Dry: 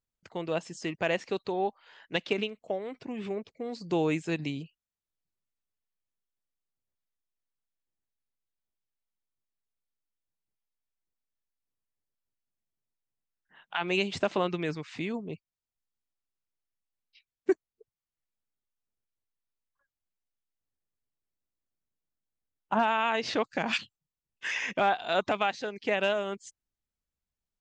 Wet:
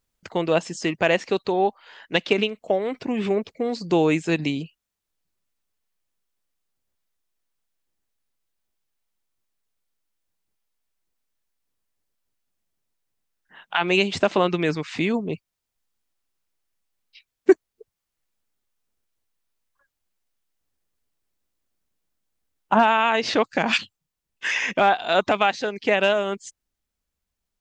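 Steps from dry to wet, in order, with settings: bell 130 Hz -5.5 dB 0.36 oct; in parallel at -3 dB: vocal rider; on the sum: gain +4 dB

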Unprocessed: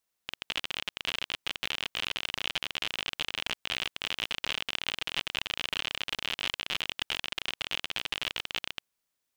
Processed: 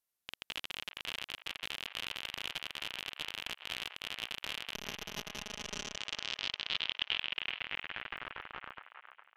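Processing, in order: 4.74–5.96 minimum comb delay 4.8 ms; low-pass sweep 13000 Hz -> 1300 Hz, 5.09–8.38; on a send: band-limited delay 0.411 s, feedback 39%, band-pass 1300 Hz, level -7 dB; on the sum: gain -7.5 dB

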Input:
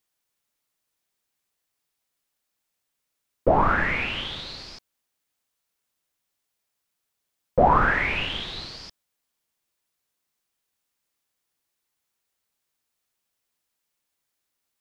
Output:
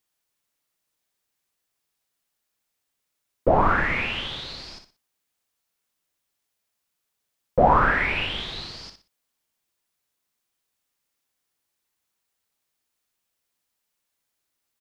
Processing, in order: 7.79–8.38 notch 6500 Hz, Q 7.4; feedback echo 60 ms, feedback 28%, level -8 dB

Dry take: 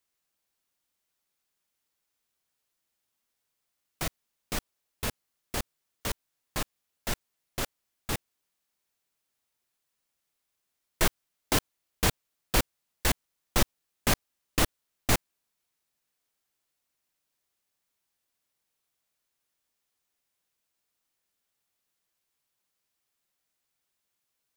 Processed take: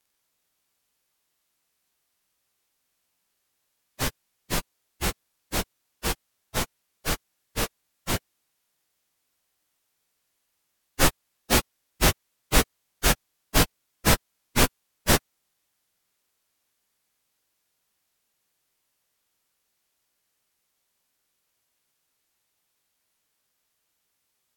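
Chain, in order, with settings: pitch shift by moving bins -3.5 st; gain +8.5 dB

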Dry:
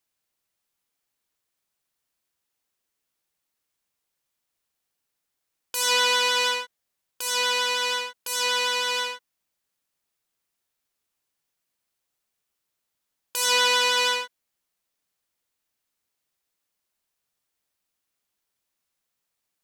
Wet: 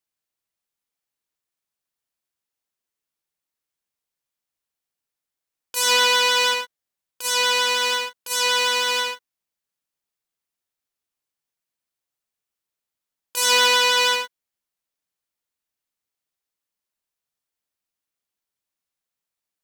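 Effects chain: gate -31 dBFS, range -6 dB; in parallel at -5 dB: companded quantiser 4-bit

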